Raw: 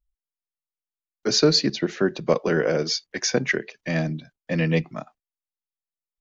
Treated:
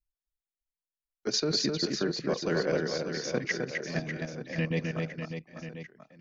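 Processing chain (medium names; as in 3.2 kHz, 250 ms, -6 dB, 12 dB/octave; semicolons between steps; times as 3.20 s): level held to a coarse grid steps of 11 dB; reverse bouncing-ball echo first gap 260 ms, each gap 1.3×, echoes 5; trim -5.5 dB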